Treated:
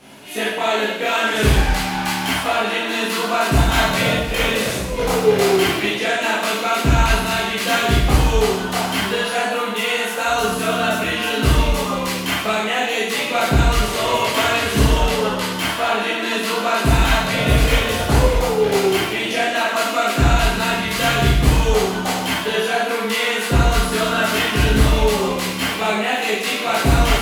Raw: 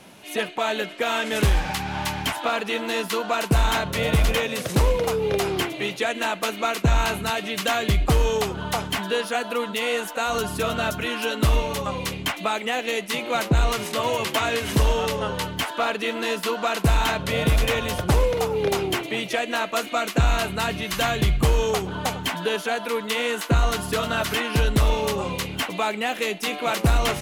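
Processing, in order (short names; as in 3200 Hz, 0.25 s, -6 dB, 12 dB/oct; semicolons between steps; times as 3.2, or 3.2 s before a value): 3.61–5.89 negative-ratio compressor -22 dBFS, ratio -0.5; reverb RT60 0.95 s, pre-delay 14 ms, DRR -8.5 dB; gain -2.5 dB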